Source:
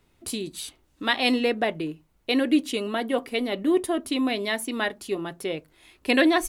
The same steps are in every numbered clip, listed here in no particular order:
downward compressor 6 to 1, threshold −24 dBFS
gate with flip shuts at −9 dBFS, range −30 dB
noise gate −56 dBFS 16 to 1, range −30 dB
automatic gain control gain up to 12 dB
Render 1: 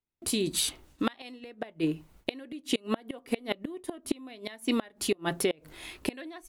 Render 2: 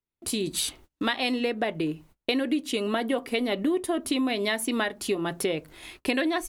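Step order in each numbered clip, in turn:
automatic gain control, then gate with flip, then downward compressor, then noise gate
noise gate, then automatic gain control, then downward compressor, then gate with flip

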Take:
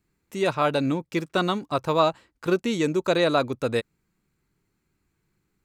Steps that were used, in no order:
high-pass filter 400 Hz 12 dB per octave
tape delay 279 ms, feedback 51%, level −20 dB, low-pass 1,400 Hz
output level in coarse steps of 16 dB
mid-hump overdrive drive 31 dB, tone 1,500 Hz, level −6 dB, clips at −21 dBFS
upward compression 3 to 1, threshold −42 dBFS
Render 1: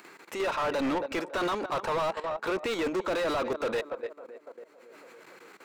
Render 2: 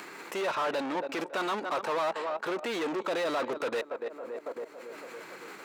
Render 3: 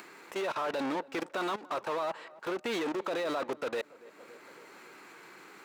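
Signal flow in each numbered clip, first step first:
high-pass filter, then tape delay, then output level in coarse steps, then mid-hump overdrive, then upward compression
tape delay, then output level in coarse steps, then upward compression, then mid-hump overdrive, then high-pass filter
mid-hump overdrive, then high-pass filter, then output level in coarse steps, then tape delay, then upward compression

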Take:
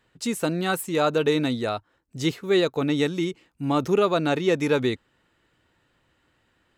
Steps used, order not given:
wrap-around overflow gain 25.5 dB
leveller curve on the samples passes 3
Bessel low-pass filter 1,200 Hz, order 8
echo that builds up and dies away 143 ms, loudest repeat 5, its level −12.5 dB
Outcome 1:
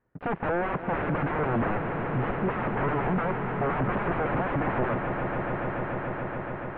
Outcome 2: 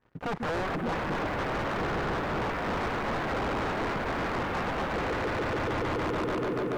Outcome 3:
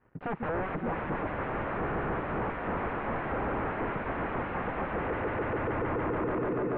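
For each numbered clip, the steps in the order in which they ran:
wrap-around overflow, then echo that builds up and dies away, then leveller curve on the samples, then Bessel low-pass filter
echo that builds up and dies away, then wrap-around overflow, then Bessel low-pass filter, then leveller curve on the samples
echo that builds up and dies away, then wrap-around overflow, then leveller curve on the samples, then Bessel low-pass filter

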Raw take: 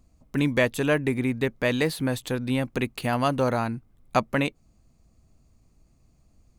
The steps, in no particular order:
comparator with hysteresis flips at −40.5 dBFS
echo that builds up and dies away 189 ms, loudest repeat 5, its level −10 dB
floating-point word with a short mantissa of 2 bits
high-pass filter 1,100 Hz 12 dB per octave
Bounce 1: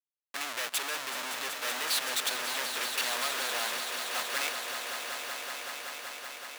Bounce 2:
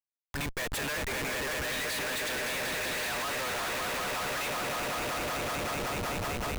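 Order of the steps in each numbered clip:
comparator with hysteresis, then high-pass filter, then floating-point word with a short mantissa, then echo that builds up and dies away
high-pass filter, then floating-point word with a short mantissa, then echo that builds up and dies away, then comparator with hysteresis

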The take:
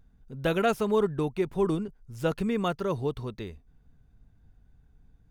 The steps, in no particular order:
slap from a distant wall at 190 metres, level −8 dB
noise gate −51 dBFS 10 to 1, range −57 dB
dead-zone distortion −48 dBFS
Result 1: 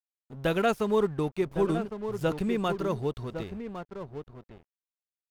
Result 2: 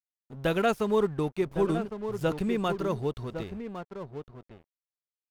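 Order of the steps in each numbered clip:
slap from a distant wall, then noise gate, then dead-zone distortion
noise gate, then slap from a distant wall, then dead-zone distortion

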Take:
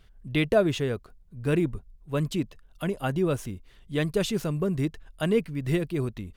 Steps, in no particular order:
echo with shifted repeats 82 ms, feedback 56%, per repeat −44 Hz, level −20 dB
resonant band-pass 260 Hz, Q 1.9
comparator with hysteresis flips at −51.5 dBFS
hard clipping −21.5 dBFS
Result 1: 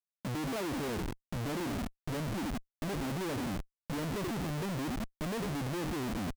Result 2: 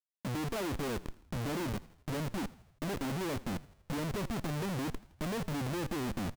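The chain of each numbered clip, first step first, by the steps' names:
echo with shifted repeats, then hard clipping, then resonant band-pass, then comparator with hysteresis
hard clipping, then resonant band-pass, then comparator with hysteresis, then echo with shifted repeats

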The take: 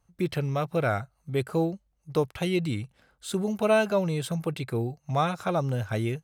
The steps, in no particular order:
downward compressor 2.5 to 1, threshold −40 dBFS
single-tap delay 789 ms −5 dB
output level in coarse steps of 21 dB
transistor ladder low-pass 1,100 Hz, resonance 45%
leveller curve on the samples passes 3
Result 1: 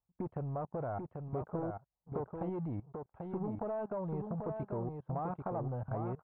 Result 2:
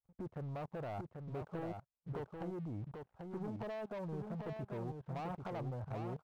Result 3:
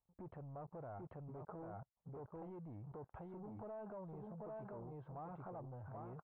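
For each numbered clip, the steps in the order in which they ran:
leveller curve on the samples, then output level in coarse steps, then transistor ladder low-pass, then downward compressor, then single-tap delay
downward compressor, then transistor ladder low-pass, then leveller curve on the samples, then output level in coarse steps, then single-tap delay
single-tap delay, then downward compressor, then leveller curve on the samples, then output level in coarse steps, then transistor ladder low-pass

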